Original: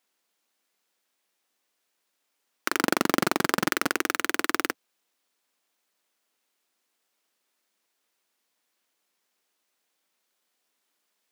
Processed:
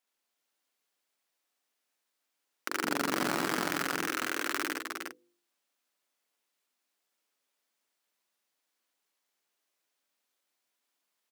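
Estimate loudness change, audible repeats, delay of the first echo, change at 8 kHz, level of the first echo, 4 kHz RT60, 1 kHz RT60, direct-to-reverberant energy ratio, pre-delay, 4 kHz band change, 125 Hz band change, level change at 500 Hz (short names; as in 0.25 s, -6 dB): -6.0 dB, 3, 71 ms, -5.5 dB, -3.0 dB, none, none, none, none, -5.0 dB, -6.5 dB, -6.5 dB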